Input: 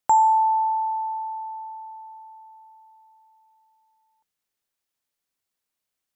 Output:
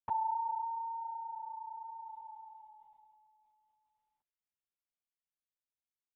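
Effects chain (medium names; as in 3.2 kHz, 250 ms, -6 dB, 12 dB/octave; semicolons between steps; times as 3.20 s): Doppler pass-by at 2.32 s, 8 m/s, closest 4 m; LPC vocoder at 8 kHz whisper; trim -4 dB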